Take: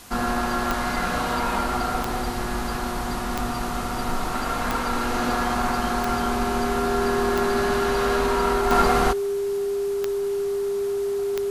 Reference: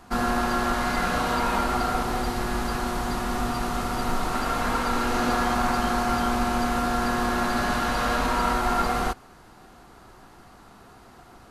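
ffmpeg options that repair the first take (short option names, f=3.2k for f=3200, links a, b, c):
-af "adeclick=t=4,bandreject=f=400:w=30,afwtdn=0.0056,asetnsamples=n=441:p=0,asendcmd='8.71 volume volume -5dB',volume=0dB"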